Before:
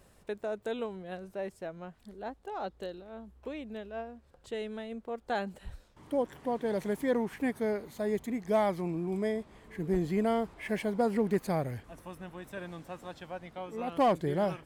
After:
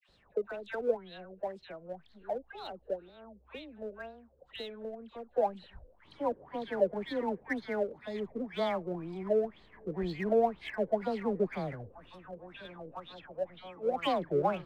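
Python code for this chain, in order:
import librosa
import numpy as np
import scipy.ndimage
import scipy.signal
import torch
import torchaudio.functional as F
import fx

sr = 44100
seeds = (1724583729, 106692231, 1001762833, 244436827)

p1 = fx.dispersion(x, sr, late='lows', ms=89.0, hz=1200.0)
p2 = fx.filter_lfo_lowpass(p1, sr, shape='sine', hz=2.0, low_hz=480.0, high_hz=4200.0, q=7.8)
p3 = fx.backlash(p2, sr, play_db=-25.5)
p4 = p2 + (p3 * librosa.db_to_amplitude(-8.5))
p5 = fx.high_shelf(p4, sr, hz=8100.0, db=9.0)
y = p5 * librosa.db_to_amplitude(-8.0)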